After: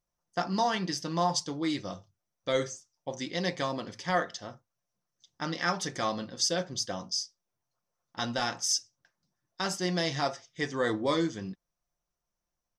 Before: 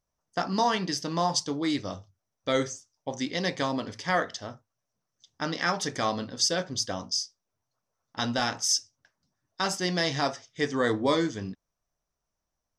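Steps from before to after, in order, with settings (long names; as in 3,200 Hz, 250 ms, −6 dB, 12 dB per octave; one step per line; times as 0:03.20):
comb filter 5.7 ms, depth 38%
level −3.5 dB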